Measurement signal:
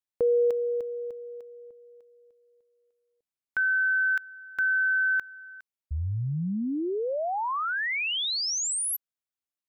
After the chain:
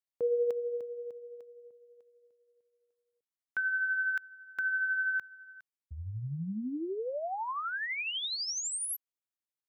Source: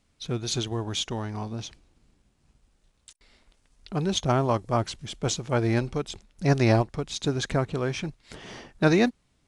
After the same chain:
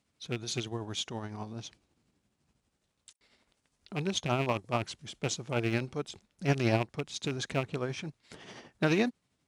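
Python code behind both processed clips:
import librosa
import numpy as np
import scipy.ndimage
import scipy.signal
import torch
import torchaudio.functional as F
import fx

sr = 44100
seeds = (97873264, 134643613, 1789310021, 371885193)

y = fx.rattle_buzz(x, sr, strikes_db=-24.0, level_db=-19.0)
y = y * (1.0 - 0.42 / 2.0 + 0.42 / 2.0 * np.cos(2.0 * np.pi * 12.0 * (np.arange(len(y)) / sr)))
y = scipy.signal.sosfilt(scipy.signal.butter(2, 97.0, 'highpass', fs=sr, output='sos'), y)
y = y * 10.0 ** (-4.5 / 20.0)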